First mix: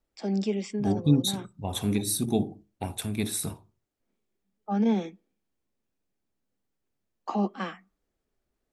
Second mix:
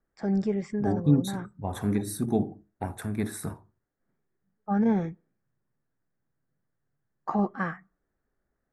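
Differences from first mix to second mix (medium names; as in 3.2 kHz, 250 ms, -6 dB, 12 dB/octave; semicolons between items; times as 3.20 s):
first voice: remove steep high-pass 190 Hz 72 dB/octave; master: add resonant high shelf 2.2 kHz -8.5 dB, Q 3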